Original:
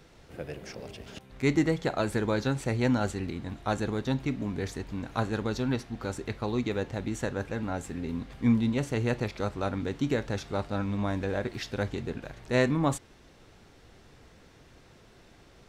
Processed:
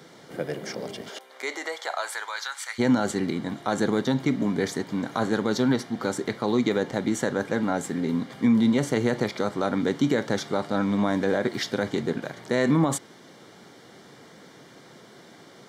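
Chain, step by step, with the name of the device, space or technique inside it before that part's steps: PA system with an anti-feedback notch (high-pass 150 Hz 24 dB/octave; Butterworth band-stop 2.6 kHz, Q 6.4; peak limiter -21 dBFS, peak gain reduction 10 dB); 1.08–2.78 s: high-pass 380 Hz -> 1.3 kHz 24 dB/octave; trim +8.5 dB

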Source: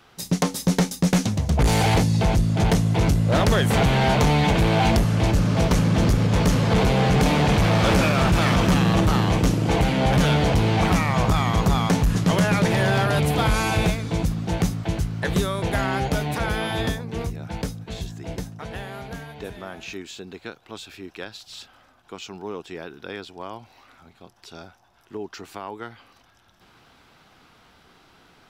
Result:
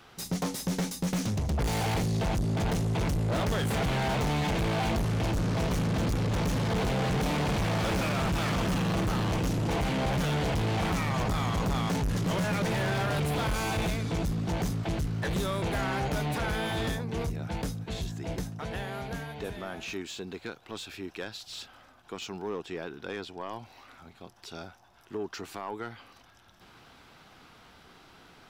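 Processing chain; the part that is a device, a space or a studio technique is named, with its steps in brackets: 22.56–23.49 s: treble shelf 5.8 kHz -5 dB; saturation between pre-emphasis and de-emphasis (treble shelf 2.7 kHz +9.5 dB; saturation -25.5 dBFS, distortion -7 dB; treble shelf 2.7 kHz -9.5 dB)

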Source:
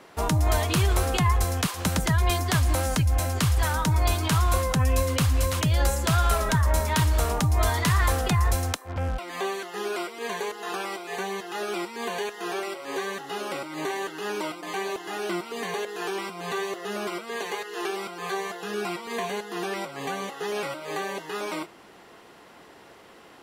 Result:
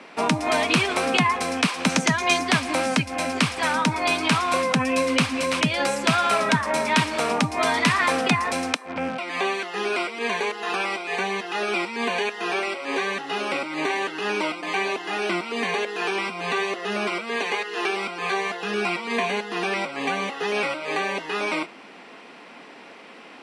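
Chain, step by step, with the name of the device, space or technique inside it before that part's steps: television speaker (cabinet simulation 180–8400 Hz, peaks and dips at 250 Hz +6 dB, 360 Hz -4 dB, 2.4 kHz +9 dB, 6.9 kHz -8 dB); 1.89–2.41 s: peaking EQ 6.4 kHz +10 dB 0.39 oct; trim +5 dB

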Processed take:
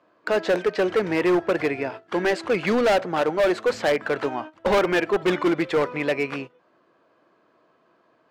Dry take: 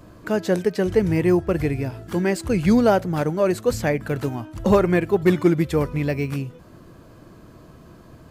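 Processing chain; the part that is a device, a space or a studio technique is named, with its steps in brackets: walkie-talkie (band-pass 500–3000 Hz; hard clipper -23.5 dBFS, distortion -7 dB; gate -41 dBFS, range -16 dB); trim +7.5 dB

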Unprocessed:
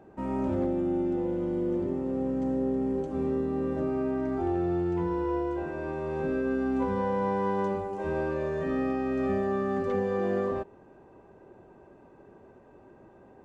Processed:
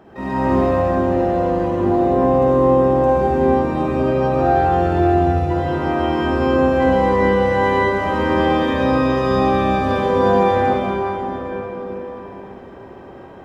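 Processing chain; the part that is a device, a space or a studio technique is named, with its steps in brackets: 4.99–5.51 s: FFT filter 120 Hz 0 dB, 310 Hz -24 dB, 600 Hz -10 dB, 1.1 kHz -27 dB, 2.5 kHz -1 dB; shimmer-style reverb (harmony voices +12 st -6 dB; reverberation RT60 4.6 s, pre-delay 47 ms, DRR -7.5 dB); trim +5 dB

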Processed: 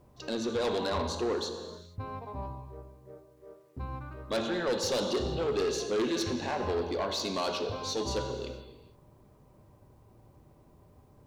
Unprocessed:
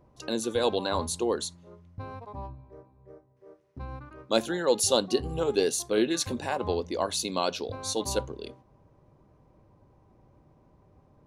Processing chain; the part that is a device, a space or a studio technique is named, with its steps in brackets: low-pass 5.6 kHz 24 dB/octave; gated-style reverb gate 490 ms falling, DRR 6 dB; open-reel tape (saturation -25 dBFS, distortion -9 dB; peaking EQ 65 Hz +2.5 dB; white noise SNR 45 dB)

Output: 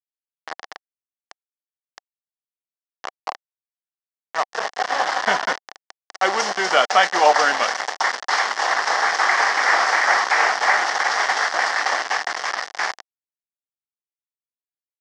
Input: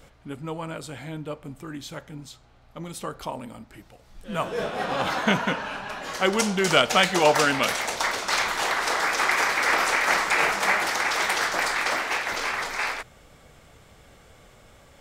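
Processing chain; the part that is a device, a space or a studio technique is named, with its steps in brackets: hand-held game console (bit crusher 4-bit; cabinet simulation 470–5800 Hz, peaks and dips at 760 Hz +8 dB, 1.1 kHz +4 dB, 1.8 kHz +7 dB, 2.5 kHz -8 dB, 3.8 kHz -5 dB, 5.4 kHz +4 dB); trim +1.5 dB

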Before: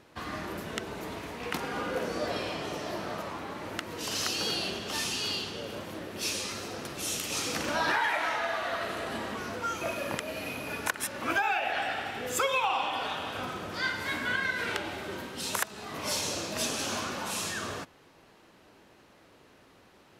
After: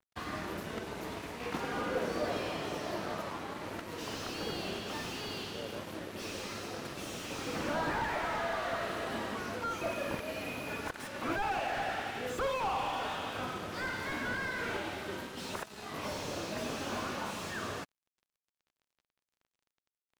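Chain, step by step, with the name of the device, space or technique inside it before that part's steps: early transistor amplifier (crossover distortion -49.5 dBFS; slew-rate limiter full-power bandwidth 29 Hz)

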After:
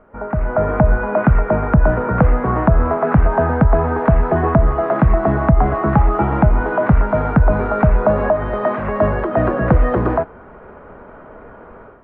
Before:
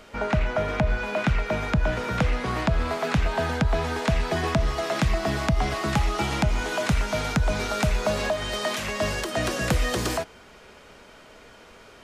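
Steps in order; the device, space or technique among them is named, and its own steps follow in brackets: action camera in a waterproof case (low-pass 1.4 kHz 24 dB/octave; level rider gain up to 12 dB; AAC 48 kbps 16 kHz)

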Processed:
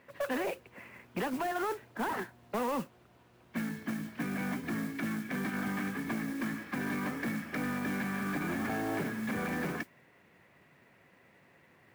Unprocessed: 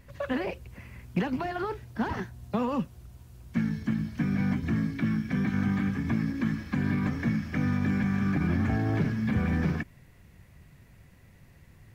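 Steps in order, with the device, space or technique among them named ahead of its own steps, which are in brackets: carbon microphone (band-pass 340–2700 Hz; saturation -30 dBFS, distortion -15 dB; modulation noise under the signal 18 dB); trim +2.5 dB

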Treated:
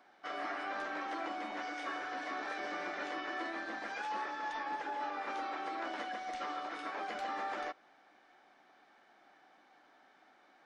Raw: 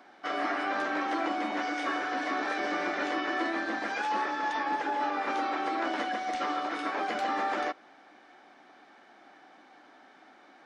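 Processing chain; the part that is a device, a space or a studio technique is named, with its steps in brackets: low shelf boost with a cut just above (bass shelf 64 Hz +7.5 dB; peaking EQ 270 Hz -5 dB 0.99 oct); trim -8 dB

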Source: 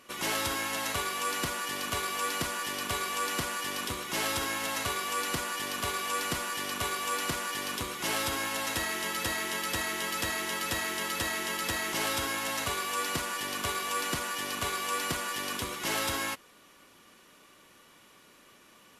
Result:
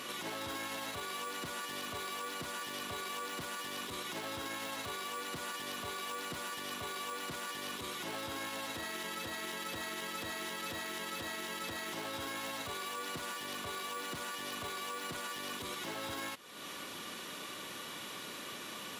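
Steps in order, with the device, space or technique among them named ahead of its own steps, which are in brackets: broadcast voice chain (high-pass 100 Hz; de-esser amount 80%; compression 4:1, threshold -52 dBFS, peak gain reduction 18 dB; peaking EQ 3.7 kHz +5.5 dB 0.45 oct; peak limiter -43 dBFS, peak gain reduction 8 dB); trim +12.5 dB

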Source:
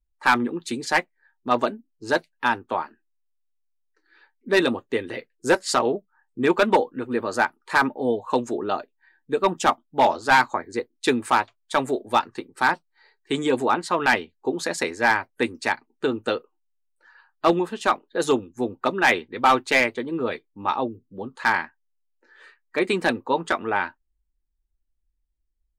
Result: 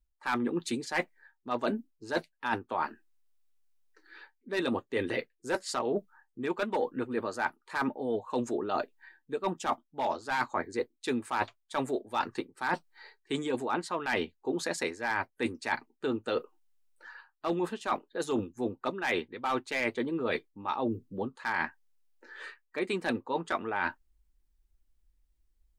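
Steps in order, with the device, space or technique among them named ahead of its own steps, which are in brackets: compression on the reversed sound (reverse; compression 16:1, threshold -33 dBFS, peak gain reduction 21 dB; reverse); trim +5.5 dB

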